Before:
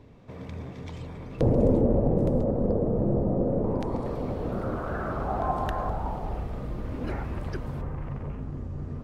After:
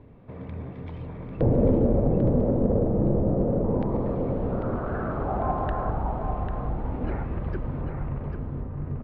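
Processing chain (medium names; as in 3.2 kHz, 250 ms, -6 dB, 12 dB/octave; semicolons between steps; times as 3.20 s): in parallel at -10.5 dB: hard clipper -22.5 dBFS, distortion -10 dB; on the sum: distance through air 460 m; delay 795 ms -7 dB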